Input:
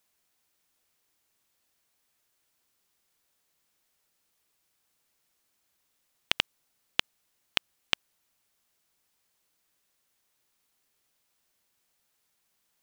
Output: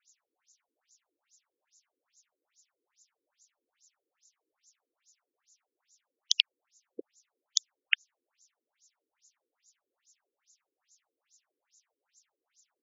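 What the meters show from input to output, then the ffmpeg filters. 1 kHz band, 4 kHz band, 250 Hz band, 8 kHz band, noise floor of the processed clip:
below −20 dB, +0.5 dB, −5.0 dB, +11.0 dB, below −85 dBFS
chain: -af "aexciter=amount=8.4:drive=8.7:freq=6200,afftfilt=real='re*between(b*sr/1024,350*pow(5300/350,0.5+0.5*sin(2*PI*2.4*pts/sr))/1.41,350*pow(5300/350,0.5+0.5*sin(2*PI*2.4*pts/sr))*1.41)':imag='im*between(b*sr/1024,350*pow(5300/350,0.5+0.5*sin(2*PI*2.4*pts/sr))/1.41,350*pow(5300/350,0.5+0.5*sin(2*PI*2.4*pts/sr))*1.41)':win_size=1024:overlap=0.75,volume=5.5dB"

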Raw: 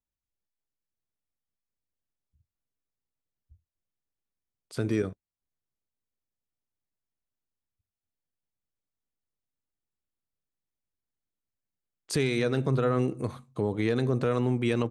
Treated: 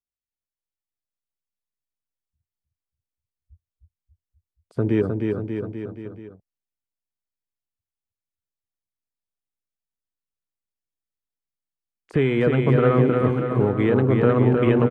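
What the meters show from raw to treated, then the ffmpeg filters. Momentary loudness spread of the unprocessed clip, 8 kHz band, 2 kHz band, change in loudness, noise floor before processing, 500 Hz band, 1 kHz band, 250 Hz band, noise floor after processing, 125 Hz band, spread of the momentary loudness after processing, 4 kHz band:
9 LU, below −15 dB, +6.0 dB, +8.0 dB, below −85 dBFS, +9.0 dB, +8.5 dB, +8.5 dB, below −85 dBFS, +9.0 dB, 15 LU, −1.5 dB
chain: -filter_complex "[0:a]acrossover=split=550|2500[link_01][link_02][link_03];[link_03]acompressor=threshold=-55dB:ratio=4[link_04];[link_01][link_02][link_04]amix=inputs=3:normalize=0,afwtdn=0.00891,aecho=1:1:310|589|840.1|1066|1269:0.631|0.398|0.251|0.158|0.1,volume=7dB"

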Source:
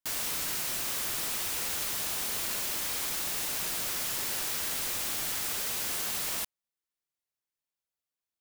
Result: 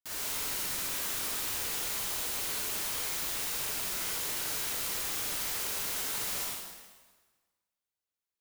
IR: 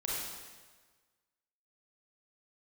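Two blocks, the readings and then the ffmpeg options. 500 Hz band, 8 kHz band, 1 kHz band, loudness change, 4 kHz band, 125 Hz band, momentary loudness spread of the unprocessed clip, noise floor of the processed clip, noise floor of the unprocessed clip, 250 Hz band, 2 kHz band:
−1.0 dB, −1.5 dB, −1.0 dB, −1.5 dB, −1.5 dB, −1.5 dB, 0 LU, below −85 dBFS, below −85 dBFS, −1.5 dB, −1.5 dB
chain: -filter_complex "[1:a]atrim=start_sample=2205[link_01];[0:a][link_01]afir=irnorm=-1:irlink=0,volume=-5.5dB"

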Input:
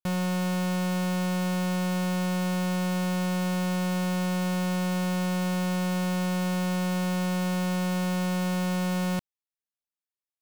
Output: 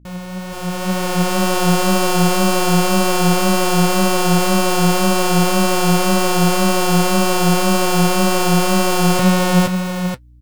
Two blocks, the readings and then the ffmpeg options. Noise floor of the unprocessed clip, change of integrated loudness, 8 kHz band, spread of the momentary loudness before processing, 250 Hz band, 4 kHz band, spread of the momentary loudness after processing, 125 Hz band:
below −85 dBFS, +12.0 dB, +18.0 dB, 0 LU, +9.5 dB, +16.0 dB, 6 LU, can't be measured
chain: -filter_complex "[0:a]dynaudnorm=framelen=230:gausssize=7:maxgain=15.5dB,flanger=delay=1.7:depth=6.4:regen=48:speed=1.9:shape=triangular,asplit=2[link_01][link_02];[link_02]aecho=0:1:200|470:0.141|0.668[link_03];[link_01][link_03]amix=inputs=2:normalize=0,aeval=exprs='val(0)+0.00398*(sin(2*PI*60*n/s)+sin(2*PI*2*60*n/s)/2+sin(2*PI*3*60*n/s)/3+sin(2*PI*4*60*n/s)/4+sin(2*PI*5*60*n/s)/5)':channel_layout=same,asplit=2[link_04][link_05];[link_05]aecho=0:1:481:0.708[link_06];[link_04][link_06]amix=inputs=2:normalize=0,volume=1.5dB"

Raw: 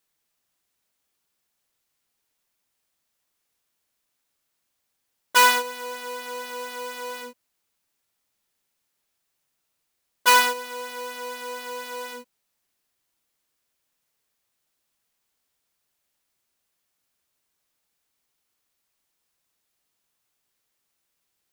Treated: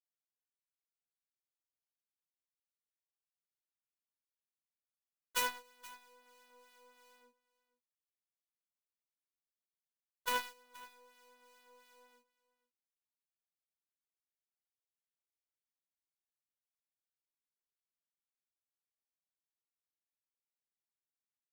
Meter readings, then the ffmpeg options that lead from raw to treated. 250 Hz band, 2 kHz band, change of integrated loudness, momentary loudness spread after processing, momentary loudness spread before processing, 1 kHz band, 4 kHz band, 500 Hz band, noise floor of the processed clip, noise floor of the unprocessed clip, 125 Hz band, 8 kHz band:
−18.0 dB, −20.0 dB, −14.0 dB, 20 LU, 18 LU, −20.5 dB, −18.5 dB, −20.5 dB, below −85 dBFS, −77 dBFS, can't be measured, −17.5 dB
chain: -filter_complex "[0:a]acrossover=split=1400[link_01][link_02];[link_01]aeval=exprs='val(0)*(1-0.5/2+0.5/2*cos(2*PI*2.9*n/s))':channel_layout=same[link_03];[link_02]aeval=exprs='val(0)*(1-0.5/2-0.5/2*cos(2*PI*2.9*n/s))':channel_layout=same[link_04];[link_03][link_04]amix=inputs=2:normalize=0,aeval=exprs='0.531*(cos(1*acos(clip(val(0)/0.531,-1,1)))-cos(1*PI/2))+0.168*(cos(3*acos(clip(val(0)/0.531,-1,1)))-cos(3*PI/2))+0.00596*(cos(4*acos(clip(val(0)/0.531,-1,1)))-cos(4*PI/2))+0.00473*(cos(5*acos(clip(val(0)/0.531,-1,1)))-cos(5*PI/2))+0.00335*(cos(8*acos(clip(val(0)/0.531,-1,1)))-cos(8*PI/2))':channel_layout=same,aecho=1:1:475:0.106,volume=-7.5dB"

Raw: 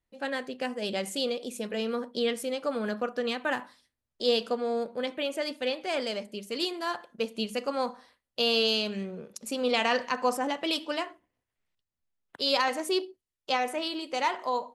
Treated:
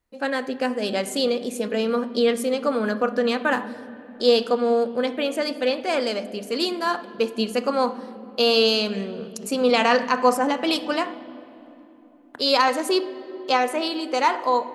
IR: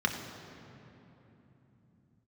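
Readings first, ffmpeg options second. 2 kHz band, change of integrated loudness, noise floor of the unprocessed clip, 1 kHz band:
+6.0 dB, +7.5 dB, below −85 dBFS, +8.5 dB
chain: -filter_complex "[0:a]asplit=2[link_01][link_02];[1:a]atrim=start_sample=2205,highshelf=frequency=4600:gain=-6.5[link_03];[link_02][link_03]afir=irnorm=-1:irlink=0,volume=-17dB[link_04];[link_01][link_04]amix=inputs=2:normalize=0,volume=6.5dB"

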